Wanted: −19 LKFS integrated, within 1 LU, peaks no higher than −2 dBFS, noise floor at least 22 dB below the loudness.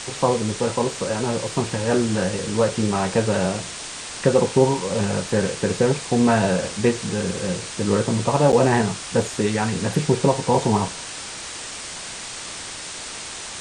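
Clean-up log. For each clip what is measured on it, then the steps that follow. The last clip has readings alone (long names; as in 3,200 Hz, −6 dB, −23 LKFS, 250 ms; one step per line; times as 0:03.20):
number of dropouts 1; longest dropout 8.6 ms; background noise floor −34 dBFS; target noise floor −44 dBFS; integrated loudness −22.0 LKFS; sample peak −3.0 dBFS; target loudness −19.0 LKFS
→ repair the gap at 0:08.52, 8.6 ms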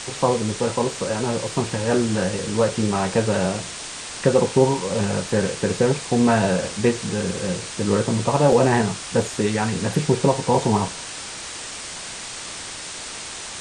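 number of dropouts 0; background noise floor −34 dBFS; target noise floor −44 dBFS
→ noise reduction from a noise print 10 dB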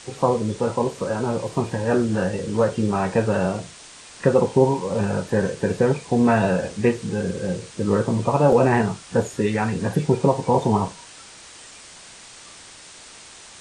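background noise floor −44 dBFS; integrated loudness −22.0 LKFS; sample peak −3.5 dBFS; target loudness −19.0 LKFS
→ level +3 dB
brickwall limiter −2 dBFS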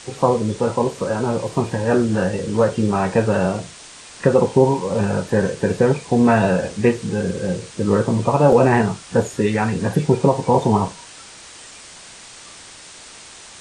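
integrated loudness −19.0 LKFS; sample peak −2.0 dBFS; background noise floor −41 dBFS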